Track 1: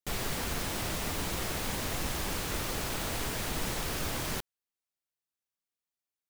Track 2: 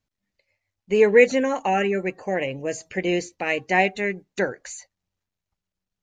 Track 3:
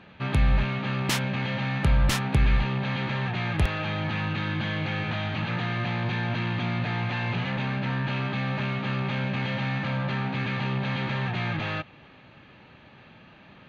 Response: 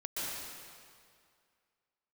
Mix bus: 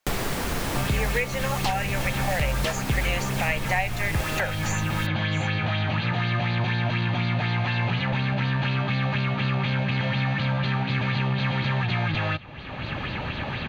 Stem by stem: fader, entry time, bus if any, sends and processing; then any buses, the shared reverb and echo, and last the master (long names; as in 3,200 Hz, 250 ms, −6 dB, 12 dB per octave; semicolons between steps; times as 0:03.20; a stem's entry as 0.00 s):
−0.5 dB, 0.00 s, no send, echo send −7 dB, no processing
0.0 dB, 0.00 s, no send, echo send −19 dB, inverse Chebyshev high-pass filter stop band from 300 Hz, stop band 40 dB; speech leveller 2 s
−3.5 dB, 0.55 s, no send, no echo send, auto-filter bell 4.1 Hz 620–4,600 Hz +9 dB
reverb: not used
echo: single-tap delay 663 ms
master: low-shelf EQ 96 Hz +7.5 dB; multiband upward and downward compressor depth 100%